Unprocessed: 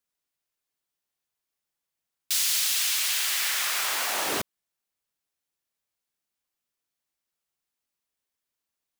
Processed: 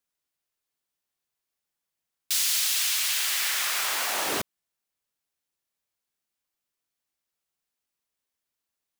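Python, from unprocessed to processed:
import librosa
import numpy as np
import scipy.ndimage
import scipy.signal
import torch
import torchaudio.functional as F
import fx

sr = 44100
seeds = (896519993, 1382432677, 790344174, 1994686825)

y = fx.highpass(x, sr, hz=fx.line((2.44, 250.0), (3.14, 670.0)), slope=24, at=(2.44, 3.14), fade=0.02)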